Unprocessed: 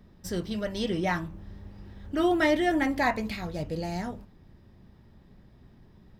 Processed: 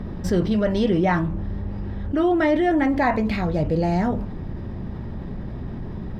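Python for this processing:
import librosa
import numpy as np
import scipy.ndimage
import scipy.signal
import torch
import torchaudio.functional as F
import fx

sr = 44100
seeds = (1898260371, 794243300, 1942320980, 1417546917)

y = fx.rider(x, sr, range_db=10, speed_s=2.0)
y = fx.lowpass(y, sr, hz=1200.0, slope=6)
y = fx.env_flatten(y, sr, amount_pct=50)
y = y * 10.0 ** (5.5 / 20.0)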